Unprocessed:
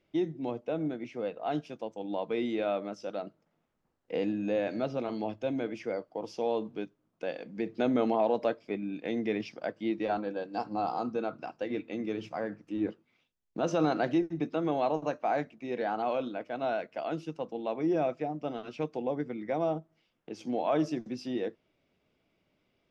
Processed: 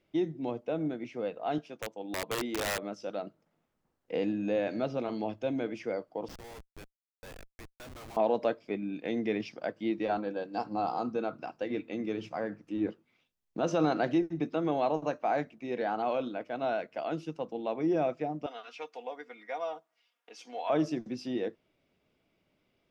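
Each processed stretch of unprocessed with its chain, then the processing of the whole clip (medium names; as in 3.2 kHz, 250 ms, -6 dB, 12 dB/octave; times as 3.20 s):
1.58–2.83 s: high-pass 290 Hz 6 dB/octave + treble shelf 3.7 kHz -5 dB + integer overflow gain 26.5 dB
6.28–8.17 s: high-pass 1.3 kHz + Schmitt trigger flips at -46 dBFS
18.46–20.70 s: high-pass 900 Hz + comb 4.2 ms, depth 63%
whole clip: none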